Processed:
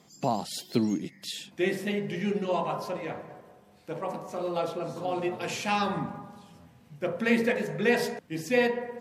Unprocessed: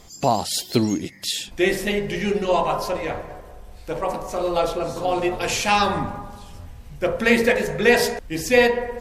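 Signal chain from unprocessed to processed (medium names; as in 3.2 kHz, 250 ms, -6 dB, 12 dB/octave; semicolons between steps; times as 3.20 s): high-pass 150 Hz 24 dB/octave; tone controls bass +8 dB, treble -4 dB; trim -9 dB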